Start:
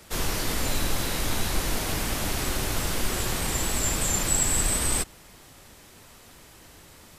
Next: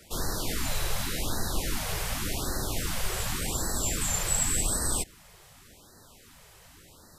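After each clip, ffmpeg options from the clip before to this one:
-af "afftfilt=real='re*(1-between(b*sr/1024,240*pow(2800/240,0.5+0.5*sin(2*PI*0.88*pts/sr))/1.41,240*pow(2800/240,0.5+0.5*sin(2*PI*0.88*pts/sr))*1.41))':imag='im*(1-between(b*sr/1024,240*pow(2800/240,0.5+0.5*sin(2*PI*0.88*pts/sr))/1.41,240*pow(2800/240,0.5+0.5*sin(2*PI*0.88*pts/sr))*1.41))':win_size=1024:overlap=0.75,volume=-3dB"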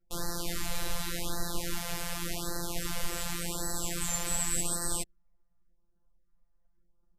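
-af "afftfilt=real='hypot(re,im)*cos(PI*b)':imag='0':win_size=1024:overlap=0.75,anlmdn=0.1"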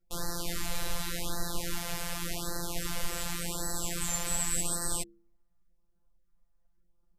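-af "bandreject=f=68.33:t=h:w=4,bandreject=f=136.66:t=h:w=4,bandreject=f=204.99:t=h:w=4,bandreject=f=273.32:t=h:w=4,bandreject=f=341.65:t=h:w=4,bandreject=f=409.98:t=h:w=4,bandreject=f=478.31:t=h:w=4"

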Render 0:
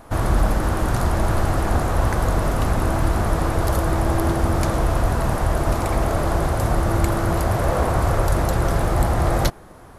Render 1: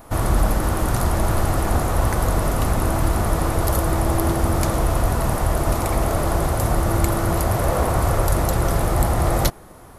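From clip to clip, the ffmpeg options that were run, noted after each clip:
-af "highshelf=f=10k:g=11.5,bandreject=f=1.6k:w=18"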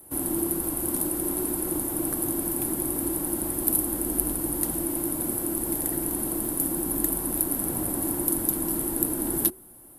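-af "aexciter=amount=10.6:drive=5.4:freq=9.2k,afreqshift=-380,volume=-12.5dB"

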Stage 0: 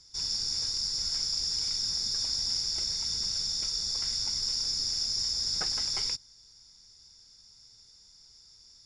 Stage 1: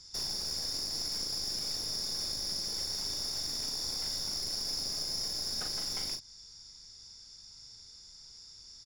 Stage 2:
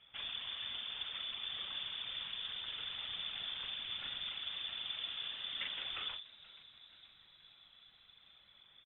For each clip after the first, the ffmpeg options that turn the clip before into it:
-filter_complex "[0:a]acompressor=threshold=-35dB:ratio=6,aeval=exprs='clip(val(0),-1,0.00944)':c=same,asplit=2[a][b];[b]adelay=39,volume=-6dB[c];[a][c]amix=inputs=2:normalize=0,volume=3dB"
-filter_complex "[0:a]lowpass=f=3k:t=q:w=0.5098,lowpass=f=3k:t=q:w=0.6013,lowpass=f=3k:t=q:w=0.9,lowpass=f=3k:t=q:w=2.563,afreqshift=-3500,afftfilt=real='hypot(re,im)*cos(2*PI*random(0))':imag='hypot(re,im)*sin(2*PI*random(1))':win_size=512:overlap=0.75,asplit=6[a][b][c][d][e][f];[b]adelay=479,afreqshift=100,volume=-19.5dB[g];[c]adelay=958,afreqshift=200,volume=-24.2dB[h];[d]adelay=1437,afreqshift=300,volume=-29dB[i];[e]adelay=1916,afreqshift=400,volume=-33.7dB[j];[f]adelay=2395,afreqshift=500,volume=-38.4dB[k];[a][g][h][i][j][k]amix=inputs=6:normalize=0,volume=9dB"

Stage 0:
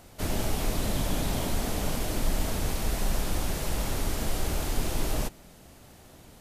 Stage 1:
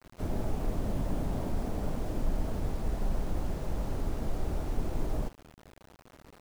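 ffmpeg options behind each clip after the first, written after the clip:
-af "adynamicsmooth=sensitivity=2:basefreq=1.6k,equalizer=f=6.4k:w=0.32:g=-14,acrusher=bits=7:mix=0:aa=0.000001,volume=-2.5dB"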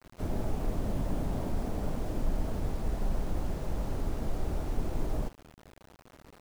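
-af anull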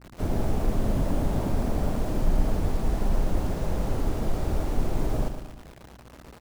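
-af "aeval=exprs='val(0)+0.00141*(sin(2*PI*60*n/s)+sin(2*PI*2*60*n/s)/2+sin(2*PI*3*60*n/s)/3+sin(2*PI*4*60*n/s)/4+sin(2*PI*5*60*n/s)/5)':c=same,aecho=1:1:113|226|339|452|565|678:0.355|0.174|0.0852|0.0417|0.0205|0.01,volume=6dB"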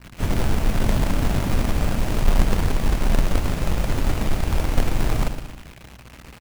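-filter_complex "[0:a]firequalizer=gain_entry='entry(130,0);entry(400,-7);entry(2500,6);entry(3700,1)':delay=0.05:min_phase=1,acrossover=split=730[a][b];[a]acrusher=bits=2:mode=log:mix=0:aa=0.000001[c];[c][b]amix=inputs=2:normalize=0,volume=5dB"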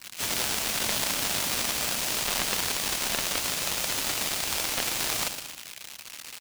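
-filter_complex "[0:a]acrossover=split=3300[a][b];[b]aeval=exprs='0.168*sin(PI/2*2.51*val(0)/0.168)':c=same[c];[a][c]amix=inputs=2:normalize=0,highpass=f=1.2k:p=1"

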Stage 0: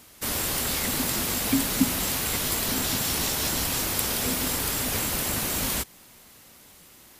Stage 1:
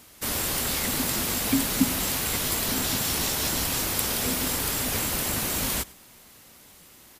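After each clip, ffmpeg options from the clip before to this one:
-af "aecho=1:1:100:0.075"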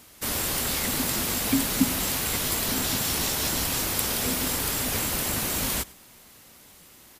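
-af anull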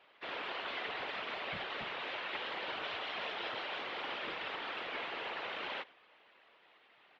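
-af "highpass=f=540:t=q:w=0.5412,highpass=f=540:t=q:w=1.307,lowpass=f=3.4k:t=q:w=0.5176,lowpass=f=3.4k:t=q:w=0.7071,lowpass=f=3.4k:t=q:w=1.932,afreqshift=-110,afftfilt=real='hypot(re,im)*cos(2*PI*random(0))':imag='hypot(re,im)*sin(2*PI*random(1))':win_size=512:overlap=0.75"

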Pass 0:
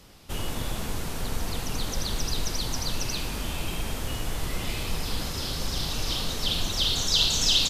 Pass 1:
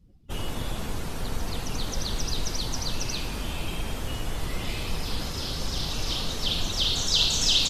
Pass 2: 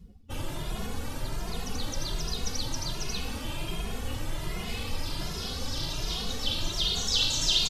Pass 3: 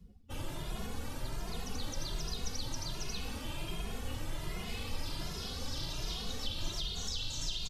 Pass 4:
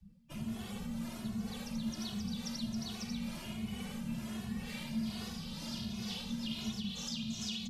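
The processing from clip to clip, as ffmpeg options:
-af "afftdn=nr=27:nf=-46"
-filter_complex "[0:a]areverse,acompressor=mode=upward:threshold=-26dB:ratio=2.5,areverse,asplit=2[a][b];[b]adelay=2.4,afreqshift=1.3[c];[a][c]amix=inputs=2:normalize=1"
-filter_complex "[0:a]acrossover=split=150[a][b];[b]acompressor=threshold=-31dB:ratio=10[c];[a][c]amix=inputs=2:normalize=0,volume=-5.5dB"
-filter_complex "[0:a]afreqshift=31,acrossover=split=410[a][b];[a]aeval=exprs='val(0)*(1-0.5/2+0.5/2*cos(2*PI*2.2*n/s))':c=same[c];[b]aeval=exprs='val(0)*(1-0.5/2-0.5/2*cos(2*PI*2.2*n/s))':c=same[d];[c][d]amix=inputs=2:normalize=0,afreqshift=-270,volume=-1dB"

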